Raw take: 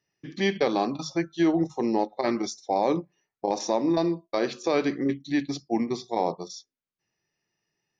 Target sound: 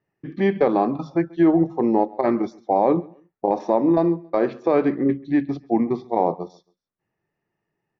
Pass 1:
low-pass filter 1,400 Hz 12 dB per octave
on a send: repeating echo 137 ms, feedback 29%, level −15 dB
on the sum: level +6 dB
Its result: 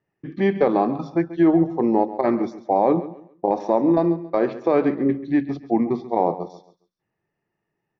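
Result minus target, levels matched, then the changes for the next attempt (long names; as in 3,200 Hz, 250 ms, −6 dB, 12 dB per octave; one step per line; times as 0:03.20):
echo-to-direct +9 dB
change: repeating echo 137 ms, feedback 29%, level −24 dB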